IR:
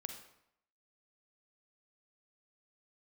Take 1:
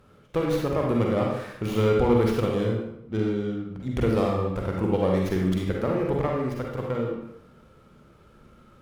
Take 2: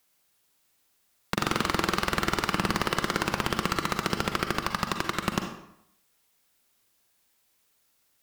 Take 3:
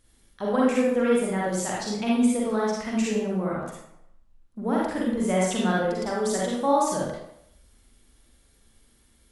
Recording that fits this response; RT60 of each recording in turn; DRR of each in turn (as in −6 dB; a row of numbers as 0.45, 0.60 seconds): 2; 0.75, 0.75, 0.75 seconds; −1.0, 5.0, −5.0 decibels